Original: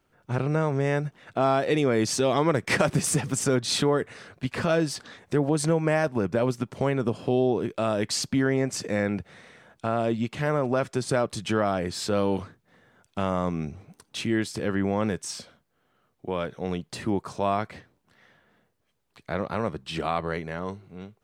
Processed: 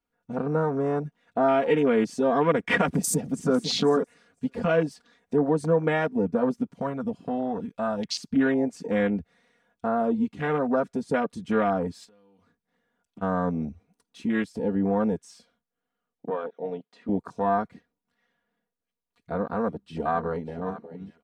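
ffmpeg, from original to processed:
-filter_complex "[0:a]asplit=2[a][b];[b]afade=t=in:st=2.88:d=0.01,afade=t=out:st=3.53:d=0.01,aecho=0:1:500|1000:0.375837|0.0375837[c];[a][c]amix=inputs=2:normalize=0,asettb=1/sr,asplit=3[d][e][f];[d]atrim=end=6.724[g];[e]atrim=start=6.72:end=8.36,asetpts=PTS-STARTPTS,afade=t=in:d=0.004:c=qsin,afade=t=out:st=1.636:d=0.004:c=qsin,equalizer=f=360:t=o:w=0.77:g=-13[h];[f]atrim=start=8.356[i];[g][h]acrossfade=d=0.004:c1=hsin:c2=qsin[j];[j][i]acrossfade=d=0.004:c1=qsin:c2=hsin,asplit=3[k][l][m];[k]afade=t=out:st=12.04:d=0.02[n];[l]acompressor=threshold=-40dB:ratio=10:attack=3.2:release=140:knee=1:detection=peak,afade=t=in:st=12.04:d=0.02,afade=t=out:st=13.21:d=0.02[o];[m]afade=t=in:st=13.21:d=0.02[p];[n][o][p]amix=inputs=3:normalize=0,asettb=1/sr,asplit=3[q][r][s];[q]atrim=end=16.304[t];[r]atrim=start=16.3:end=17.09,asetpts=PTS-STARTPTS,afade=t=in:d=0.004:c=qsin,afade=t=out:st=0.786:d=0.004:c=qsin,highpass=350,lowpass=3.7k[u];[s]atrim=start=17.086[v];[t][u]acrossfade=d=0.004:c1=hsin:c2=qsin[w];[w][v]acrossfade=d=0.004:c1=qsin:c2=hsin,asplit=2[x][y];[y]afade=t=in:st=19.42:d=0.01,afade=t=out:st=20.58:d=0.01,aecho=0:1:590|1180|1770|2360:0.211349|0.0845396|0.0338158|0.0135263[z];[x][z]amix=inputs=2:normalize=0,aecho=1:1:4.2:0.9,afwtdn=0.0398,volume=-1.5dB"

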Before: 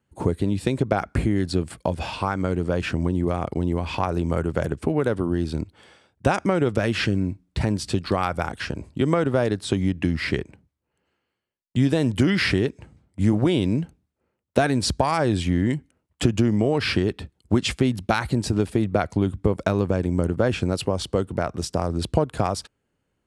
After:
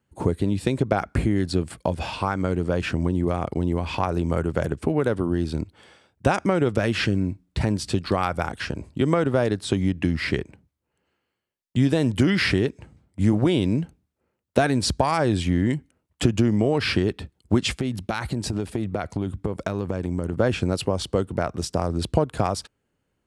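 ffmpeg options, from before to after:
-filter_complex "[0:a]asettb=1/sr,asplit=3[a][b][c];[a]atrim=end=17.714[d];[b]atrim=start=17.71:end=20.33,asetpts=PTS-STARTPTS,afade=t=in:d=0.004:c=qsin,afade=t=out:st=2.616:d=0.004:c=qsin,acompressor=threshold=-22dB:ratio=3:attack=3.2:release=140:knee=1:detection=peak[e];[c]atrim=start=20.326[f];[d][e]acrossfade=d=0.004:c1=hsin:c2=qsin[g];[g][f]acrossfade=d=0.004:c1=qsin:c2=hsin"

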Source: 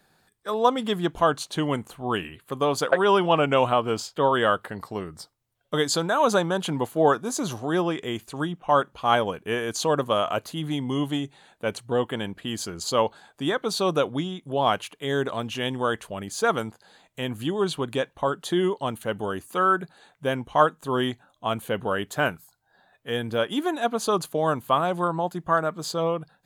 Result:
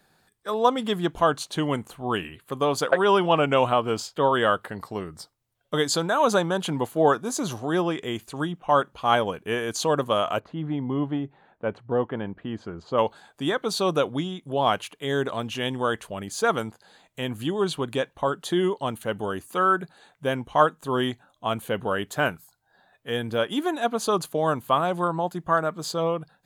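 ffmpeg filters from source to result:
-filter_complex "[0:a]asplit=3[a][b][c];[a]afade=t=out:st=10.39:d=0.02[d];[b]lowpass=1.5k,afade=t=in:st=10.39:d=0.02,afade=t=out:st=12.97:d=0.02[e];[c]afade=t=in:st=12.97:d=0.02[f];[d][e][f]amix=inputs=3:normalize=0"

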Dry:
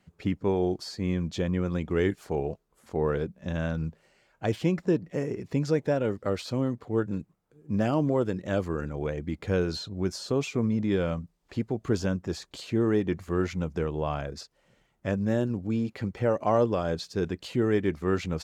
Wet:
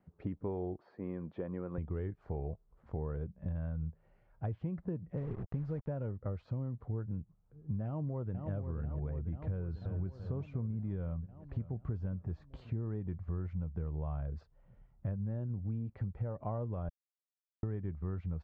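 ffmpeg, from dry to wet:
-filter_complex "[0:a]asettb=1/sr,asplit=3[a][b][c];[a]atrim=end=0.774[d];[b]atrim=start=0.77:end=1.78,asetpts=PTS-STARTPTS,afade=t=in:d=0.004:c=qsin,afade=t=out:st=1.006:d=0.004:c=qsin,highpass=260,lowpass=2.4k[e];[c]atrim=start=1.776[f];[d][e]acrossfade=d=0.004:c1=hsin:c2=qsin[g];[g][f]acrossfade=d=0.004:c1=qsin:c2=hsin,asettb=1/sr,asplit=3[h][i][j];[h]atrim=end=5.174[k];[i]atrim=start=5.17:end=5.88,asetpts=PTS-STARTPTS,afade=t=in:d=0.004:c=qsin,afade=t=out:st=0.706:d=0.004:c=qsin,acrusher=bits=5:mix=0:aa=0.5[l];[j]atrim=start=5.876[m];[k][l]acrossfade=d=0.004:c1=hsin:c2=qsin[n];[n][m]acrossfade=d=0.004:c1=qsin:c2=hsin,asplit=2[o][p];[p]afade=t=in:st=7.85:d=0.01,afade=t=out:st=8.5:d=0.01,aecho=0:1:490|980|1470|1960|2450|2940|3430|3920|4410|4900|5390:0.354813|0.248369|0.173859|0.121701|0.0851907|0.0596335|0.0417434|0.0292204|0.0204543|0.014318|0.0100226[q];[o][q]amix=inputs=2:normalize=0,asplit=2[r][s];[s]afade=t=in:st=9.51:d=0.01,afade=t=out:st=10.09:d=0.01,aecho=0:1:340|680|1020|1360|1700:0.266073|0.119733|0.0538797|0.0242459|0.0109106[t];[r][t]amix=inputs=2:normalize=0,asplit=2[u][v];[v]afade=t=in:st=11.05:d=0.01,afade=t=out:st=11.88:d=0.01,aecho=0:1:540|1080|1620:0.149624|0.0448871|0.0134661[w];[u][w]amix=inputs=2:normalize=0,asplit=3[x][y][z];[x]atrim=end=16.89,asetpts=PTS-STARTPTS,afade=t=out:st=16.886:d=0.004:c=hsin[aa];[y]atrim=start=16.89:end=17.63,asetpts=PTS-STARTPTS,volume=0[ab];[z]atrim=start=17.63,asetpts=PTS-STARTPTS,afade=t=in:d=0.004:c=hsin[ac];[aa][ab][ac]concat=n=3:v=0:a=1,lowpass=1.1k,asubboost=boost=8:cutoff=110,acompressor=threshold=-31dB:ratio=6,volume=-3.5dB"

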